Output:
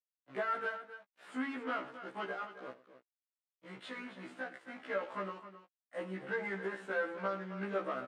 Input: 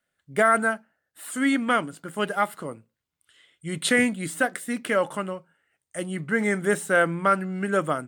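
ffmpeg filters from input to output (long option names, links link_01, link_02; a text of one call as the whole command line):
ffmpeg -i in.wav -filter_complex "[0:a]acompressor=threshold=-24dB:ratio=6,asoftclip=type=tanh:threshold=-23dB,asplit=3[link_01][link_02][link_03];[link_01]afade=type=out:start_time=2.35:duration=0.02[link_04];[link_02]flanger=delay=9.9:depth=9.1:regen=-90:speed=1.8:shape=triangular,afade=type=in:start_time=2.35:duration=0.02,afade=type=out:start_time=4.91:duration=0.02[link_05];[link_03]afade=type=in:start_time=4.91:duration=0.02[link_06];[link_04][link_05][link_06]amix=inputs=3:normalize=0,aeval=exprs='val(0)*gte(abs(val(0)),0.01)':channel_layout=same,aeval=exprs='0.0708*(cos(1*acos(clip(val(0)/0.0708,-1,1)))-cos(1*PI/2))+0.00891*(cos(4*acos(clip(val(0)/0.0708,-1,1)))-cos(4*PI/2))':channel_layout=same,highpass=300,lowpass=2400,aecho=1:1:57|108|266:0.15|0.133|0.237,afftfilt=real='re*1.73*eq(mod(b,3),0)':imag='im*1.73*eq(mod(b,3),0)':win_size=2048:overlap=0.75,volume=-2.5dB" out.wav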